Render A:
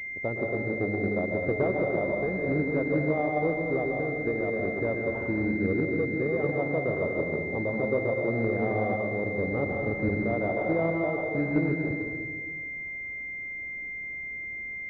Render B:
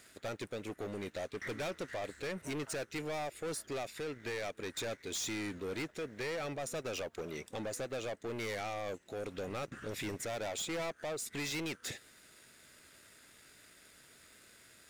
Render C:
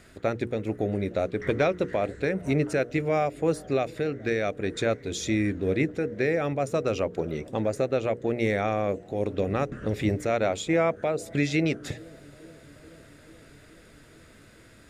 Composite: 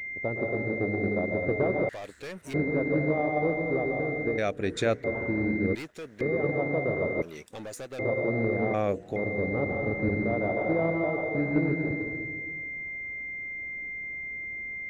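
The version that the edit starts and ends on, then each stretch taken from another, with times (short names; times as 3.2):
A
1.89–2.54 from B
4.38–5.04 from C
5.75–6.21 from B
7.22–7.99 from B
8.74–9.16 from C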